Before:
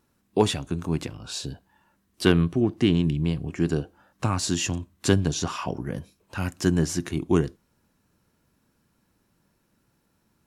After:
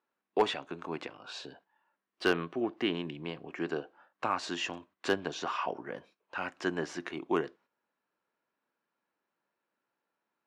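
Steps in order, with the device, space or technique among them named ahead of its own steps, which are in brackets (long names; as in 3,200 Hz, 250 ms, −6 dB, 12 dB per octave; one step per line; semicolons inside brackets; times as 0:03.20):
walkie-talkie (band-pass filter 530–2,600 Hz; hard clipping −16.5 dBFS, distortion −18 dB; noise gate −59 dBFS, range −9 dB)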